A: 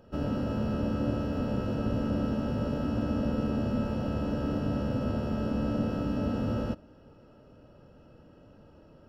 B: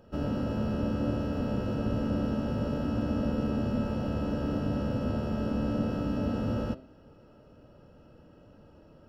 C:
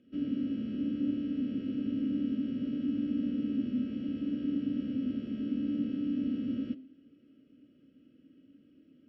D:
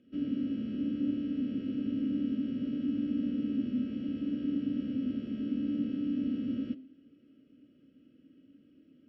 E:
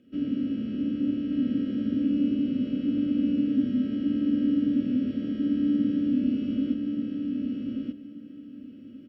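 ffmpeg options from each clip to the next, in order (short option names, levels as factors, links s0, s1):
-af "bandreject=f=130.1:t=h:w=4,bandreject=f=260.2:t=h:w=4,bandreject=f=390.3:t=h:w=4,bandreject=f=520.4:t=h:w=4,bandreject=f=650.5:t=h:w=4,bandreject=f=780.6:t=h:w=4,bandreject=f=910.7:t=h:w=4,bandreject=f=1040.8:t=h:w=4,bandreject=f=1170.9:t=h:w=4,bandreject=f=1301:t=h:w=4,bandreject=f=1431.1:t=h:w=4,bandreject=f=1561.2:t=h:w=4,bandreject=f=1691.3:t=h:w=4,bandreject=f=1821.4:t=h:w=4,bandreject=f=1951.5:t=h:w=4,bandreject=f=2081.6:t=h:w=4,bandreject=f=2211.7:t=h:w=4,bandreject=f=2341.8:t=h:w=4,bandreject=f=2471.9:t=h:w=4,bandreject=f=2602:t=h:w=4,bandreject=f=2732.1:t=h:w=4,bandreject=f=2862.2:t=h:w=4,bandreject=f=2992.3:t=h:w=4,bandreject=f=3122.4:t=h:w=4,bandreject=f=3252.5:t=h:w=4,bandreject=f=3382.6:t=h:w=4,bandreject=f=3512.7:t=h:w=4,bandreject=f=3642.8:t=h:w=4,bandreject=f=3772.9:t=h:w=4,bandreject=f=3903:t=h:w=4,bandreject=f=4033.1:t=h:w=4,bandreject=f=4163.2:t=h:w=4,bandreject=f=4293.3:t=h:w=4,bandreject=f=4423.4:t=h:w=4,bandreject=f=4553.5:t=h:w=4,bandreject=f=4683.6:t=h:w=4,bandreject=f=4813.7:t=h:w=4,bandreject=f=4943.8:t=h:w=4"
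-filter_complex "[0:a]asplit=3[s0][s1][s2];[s0]bandpass=f=270:t=q:w=8,volume=1[s3];[s1]bandpass=f=2290:t=q:w=8,volume=0.501[s4];[s2]bandpass=f=3010:t=q:w=8,volume=0.355[s5];[s3][s4][s5]amix=inputs=3:normalize=0,volume=2"
-af anull
-af "aecho=1:1:1182|2364|3546:0.708|0.149|0.0312,volume=1.68"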